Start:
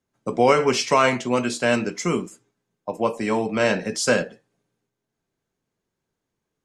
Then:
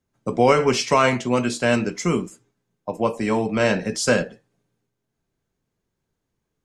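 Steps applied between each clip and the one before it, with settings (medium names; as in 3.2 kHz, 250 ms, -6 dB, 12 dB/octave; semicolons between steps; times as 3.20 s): bass shelf 120 Hz +10 dB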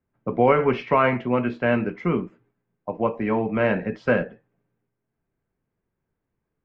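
low-pass 2.4 kHz 24 dB/octave; trim -1.5 dB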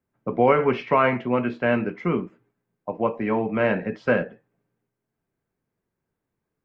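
bass shelf 69 Hz -9.5 dB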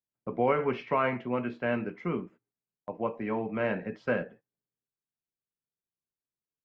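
gate -43 dBFS, range -15 dB; trim -8 dB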